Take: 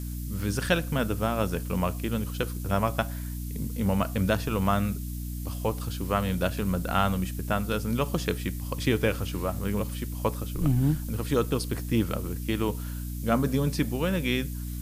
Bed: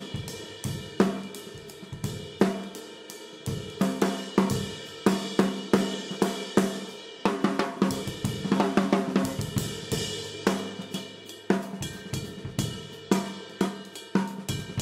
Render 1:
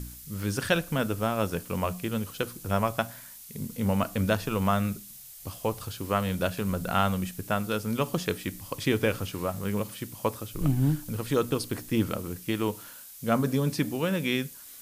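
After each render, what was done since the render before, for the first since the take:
hum removal 60 Hz, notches 5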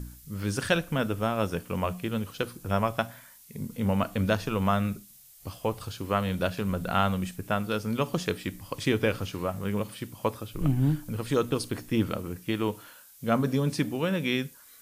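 noise reduction from a noise print 7 dB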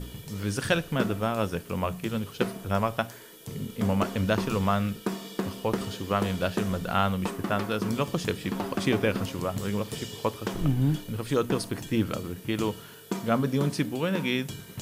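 mix in bed −8 dB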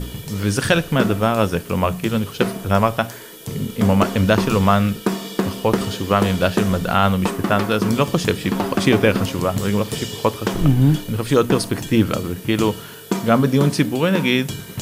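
level +10 dB
brickwall limiter −3 dBFS, peak gain reduction 3 dB

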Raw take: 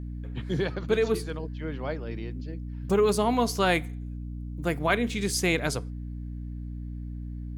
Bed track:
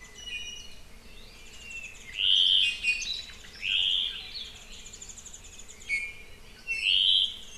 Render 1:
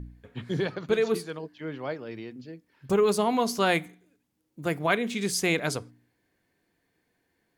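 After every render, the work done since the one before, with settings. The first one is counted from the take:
hum removal 60 Hz, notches 5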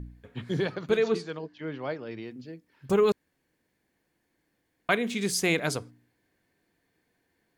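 0:00.97–0:02.23: low-pass filter 6,800 Hz 24 dB per octave
0:03.12–0:04.89: fill with room tone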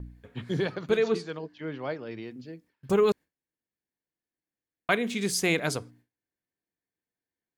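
noise gate with hold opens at −48 dBFS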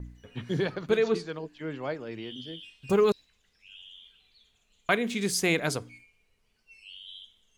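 mix in bed track −23 dB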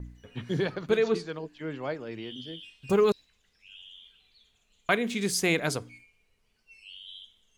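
no processing that can be heard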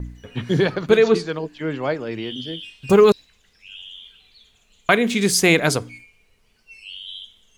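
level +10 dB
brickwall limiter −2 dBFS, peak gain reduction 2 dB

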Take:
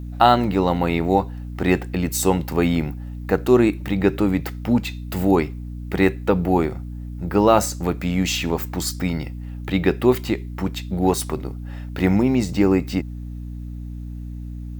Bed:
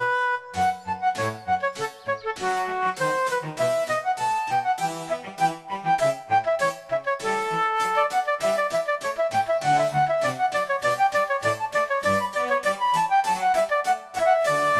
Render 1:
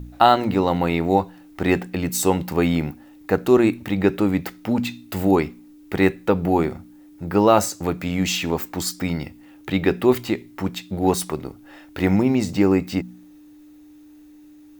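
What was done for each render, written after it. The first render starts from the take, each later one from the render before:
hum removal 60 Hz, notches 4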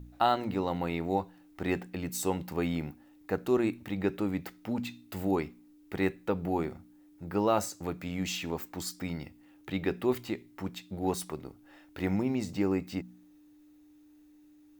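level −11.5 dB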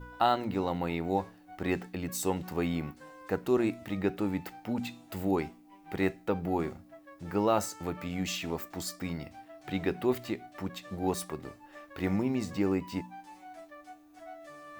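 mix in bed −27.5 dB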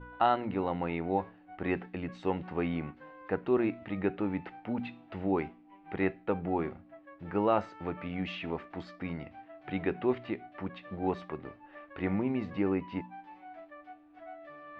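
low-pass filter 2,900 Hz 24 dB per octave
low-shelf EQ 180 Hz −3.5 dB

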